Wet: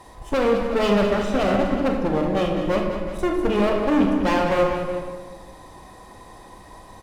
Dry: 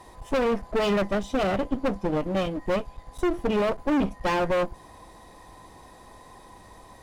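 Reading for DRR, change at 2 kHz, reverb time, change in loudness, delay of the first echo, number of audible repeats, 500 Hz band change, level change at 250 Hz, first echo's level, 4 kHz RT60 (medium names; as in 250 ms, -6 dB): 1.0 dB, +4.0 dB, 1.4 s, +5.0 dB, 200 ms, 2, +5.0 dB, +5.5 dB, -9.5 dB, 0.85 s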